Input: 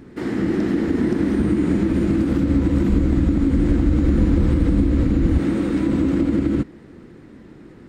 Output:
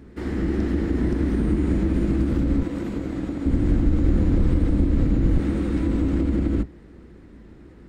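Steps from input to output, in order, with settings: octaver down 2 oct, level +1 dB; 2.63–3.46 HPF 350 Hz 6 dB/oct; gain -5 dB

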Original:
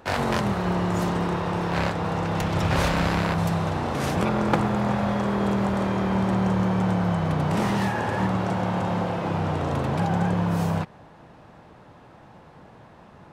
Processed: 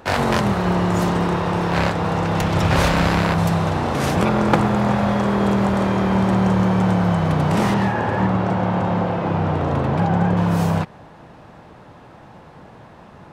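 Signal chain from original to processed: 7.74–10.37 LPF 2400 Hz 6 dB/oct; gain +5.5 dB

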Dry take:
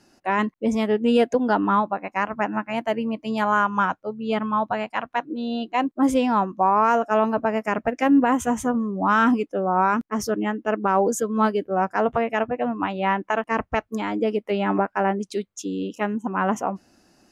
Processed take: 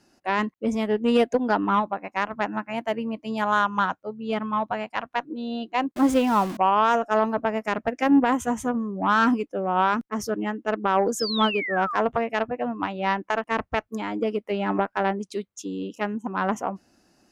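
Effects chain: 5.96–6.57 zero-crossing step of -26 dBFS; added harmonics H 3 -19 dB, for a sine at -9 dBFS; 11.19–12.01 painted sound fall 980–5400 Hz -30 dBFS

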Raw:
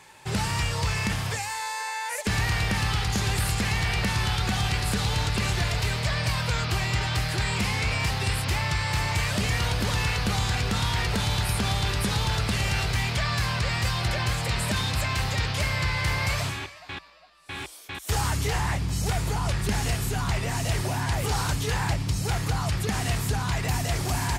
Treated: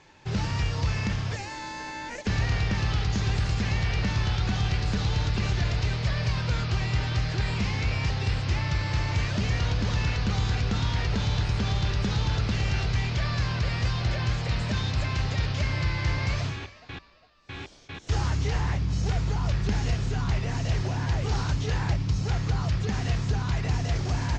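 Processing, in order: in parallel at -8 dB: sample-and-hold 37×; on the sum: steep low-pass 6700 Hz 48 dB/oct; low shelf 180 Hz +5 dB; gain -5.5 dB

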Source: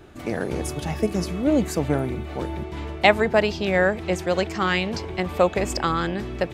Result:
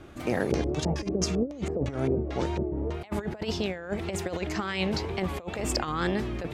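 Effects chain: negative-ratio compressor -25 dBFS, ratio -0.5; 0.51–2.92 LFO low-pass square 5.5 Hz -> 1.4 Hz 490–6200 Hz; wow and flutter 110 cents; gain -3.5 dB

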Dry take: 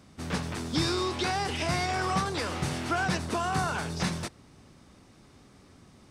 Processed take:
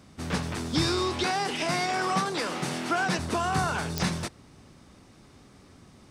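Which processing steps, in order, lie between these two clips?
1.24–3.19 HPF 160 Hz 24 dB/oct; pops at 3.98, -14 dBFS; gain +2 dB

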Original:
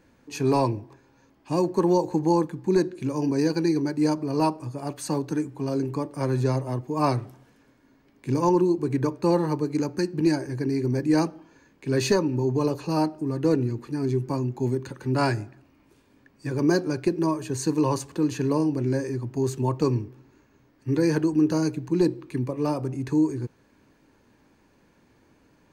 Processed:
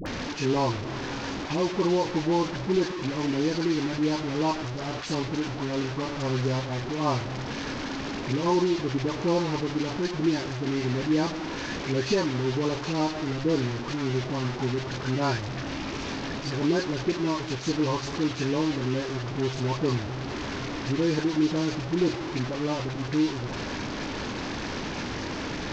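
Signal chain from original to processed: delta modulation 32 kbps, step -23.5 dBFS; dispersion highs, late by 60 ms, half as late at 780 Hz; gain -3 dB

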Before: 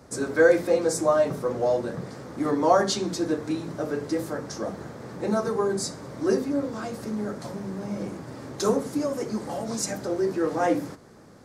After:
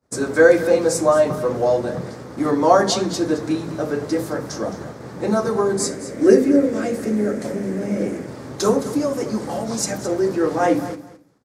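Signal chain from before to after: expander -36 dBFS; 5.79–8.27 graphic EQ 125/250/500/1000/2000/4000/8000 Hz -6/+6/+7/-9/+8/-5/+4 dB; feedback echo 0.216 s, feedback 17%, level -14 dB; gain +5.5 dB

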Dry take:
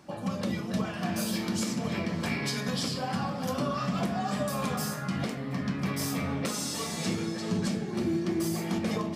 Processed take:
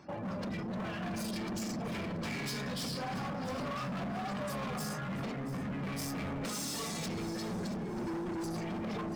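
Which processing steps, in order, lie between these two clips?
spectral gate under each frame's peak -25 dB strong; hard clip -35.5 dBFS, distortion -6 dB; on a send: thinning echo 0.681 s, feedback 33%, level -15 dB

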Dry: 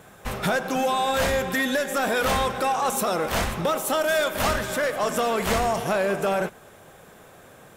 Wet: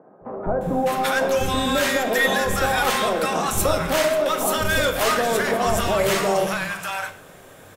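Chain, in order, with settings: three bands offset in time mids, lows, highs 0.21/0.61 s, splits 200/940 Hz; on a send at -6 dB: reverb RT60 0.55 s, pre-delay 3 ms; on the sum: gain +3.5 dB

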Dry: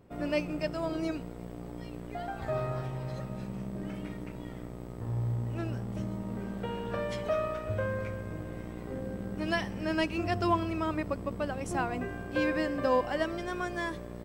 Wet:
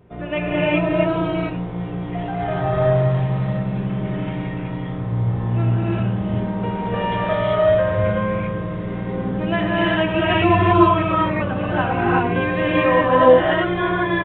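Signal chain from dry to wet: notch comb 280 Hz; non-linear reverb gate 0.41 s rising, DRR -7.5 dB; downsampling 8000 Hz; gain +7.5 dB

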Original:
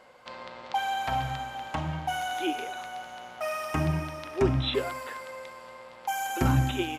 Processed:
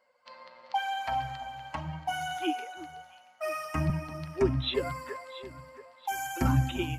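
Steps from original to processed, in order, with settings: per-bin expansion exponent 1.5; echo with dull and thin repeats by turns 0.34 s, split 910 Hz, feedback 58%, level -11 dB; 2.38–3.9 three-band expander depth 40%

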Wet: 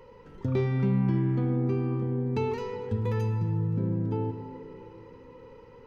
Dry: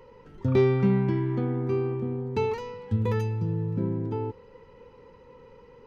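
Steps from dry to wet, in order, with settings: compressor 2:1, threshold -29 dBFS, peak gain reduction 7 dB; on a send: reverb RT60 3.2 s, pre-delay 33 ms, DRR 7 dB

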